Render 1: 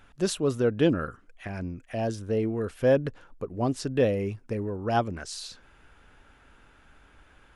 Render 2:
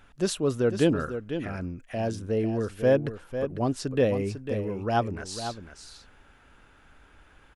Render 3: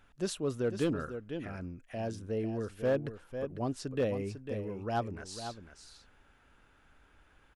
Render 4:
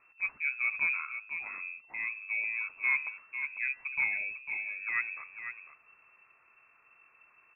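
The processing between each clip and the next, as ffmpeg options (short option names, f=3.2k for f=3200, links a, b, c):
-af "aecho=1:1:499:0.335"
-af "volume=16dB,asoftclip=hard,volume=-16dB,volume=-7.5dB"
-af "lowpass=f=2.3k:t=q:w=0.5098,lowpass=f=2.3k:t=q:w=0.6013,lowpass=f=2.3k:t=q:w=0.9,lowpass=f=2.3k:t=q:w=2.563,afreqshift=-2700,bandreject=f=88.79:t=h:w=4,bandreject=f=177.58:t=h:w=4,bandreject=f=266.37:t=h:w=4,bandreject=f=355.16:t=h:w=4,bandreject=f=443.95:t=h:w=4,bandreject=f=532.74:t=h:w=4,bandreject=f=621.53:t=h:w=4,bandreject=f=710.32:t=h:w=4,bandreject=f=799.11:t=h:w=4,bandreject=f=887.9:t=h:w=4,bandreject=f=976.69:t=h:w=4,bandreject=f=1.06548k:t=h:w=4,bandreject=f=1.15427k:t=h:w=4,bandreject=f=1.24306k:t=h:w=4,bandreject=f=1.33185k:t=h:w=4,bandreject=f=1.42064k:t=h:w=4,bandreject=f=1.50943k:t=h:w=4,bandreject=f=1.59822k:t=h:w=4,bandreject=f=1.68701k:t=h:w=4,bandreject=f=1.7758k:t=h:w=4,bandreject=f=1.86459k:t=h:w=4,bandreject=f=1.95338k:t=h:w=4,bandreject=f=2.04217k:t=h:w=4"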